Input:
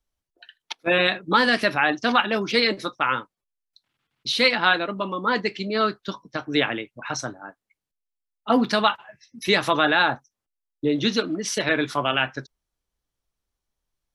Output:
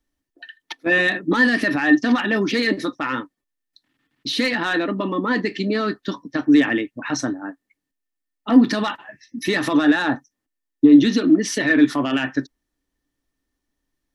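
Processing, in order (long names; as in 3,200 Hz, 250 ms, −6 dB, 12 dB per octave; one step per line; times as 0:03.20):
soft clipping −11.5 dBFS, distortion −17 dB
brickwall limiter −19 dBFS, peak gain reduction 7 dB
hollow resonant body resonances 280/1,800 Hz, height 17 dB, ringing for 55 ms
level +2.5 dB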